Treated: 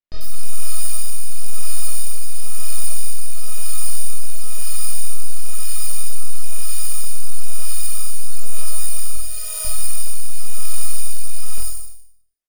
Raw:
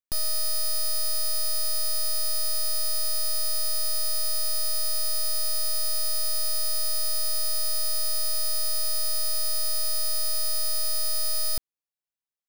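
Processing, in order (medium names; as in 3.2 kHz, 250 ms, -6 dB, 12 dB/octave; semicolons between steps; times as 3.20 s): 9.15–9.65 s: high-pass 400 Hz 24 dB/octave; on a send: flutter echo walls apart 4.2 m, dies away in 0.75 s; on the sum: rotary cabinet horn 1 Hz; chorus voices 6, 0.97 Hz, delay 20 ms, depth 3 ms; bands offset in time lows, highs 90 ms, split 4.7 kHz; in parallel at -0.5 dB: compression, threshold -20 dBFS, peak gain reduction 11.5 dB; on the sum: trim +1 dB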